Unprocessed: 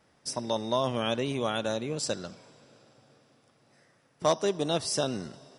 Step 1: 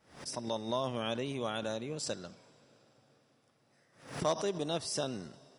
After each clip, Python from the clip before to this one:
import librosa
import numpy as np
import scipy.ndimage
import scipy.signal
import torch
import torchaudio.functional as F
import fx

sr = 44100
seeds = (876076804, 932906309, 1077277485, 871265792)

y = fx.pre_swell(x, sr, db_per_s=120.0)
y = y * librosa.db_to_amplitude(-6.5)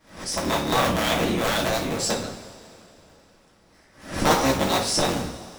y = fx.cycle_switch(x, sr, every=3, mode='inverted')
y = fx.rev_double_slope(y, sr, seeds[0], early_s=0.38, late_s=2.5, knee_db=-19, drr_db=-3.5)
y = y * librosa.db_to_amplitude(7.5)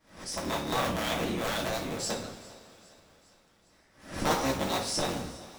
y = fx.echo_thinned(x, sr, ms=406, feedback_pct=58, hz=530.0, wet_db=-21.0)
y = y * librosa.db_to_amplitude(-8.0)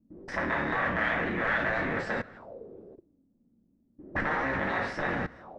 y = fx.level_steps(x, sr, step_db=19)
y = fx.envelope_lowpass(y, sr, base_hz=230.0, top_hz=1800.0, q=5.6, full_db=-42.0, direction='up')
y = y * librosa.db_to_amplitude(6.0)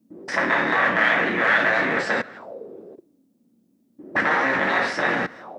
y = scipy.signal.sosfilt(scipy.signal.butter(2, 210.0, 'highpass', fs=sr, output='sos'), x)
y = fx.high_shelf(y, sr, hz=2500.0, db=7.5)
y = y * librosa.db_to_amplitude(7.5)